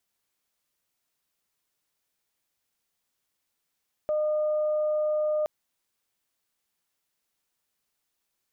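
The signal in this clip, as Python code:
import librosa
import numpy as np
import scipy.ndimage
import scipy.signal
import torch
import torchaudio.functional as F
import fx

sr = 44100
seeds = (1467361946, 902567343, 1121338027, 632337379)

y = fx.additive_steady(sr, length_s=1.37, hz=609.0, level_db=-23, upper_db=(-19.5,))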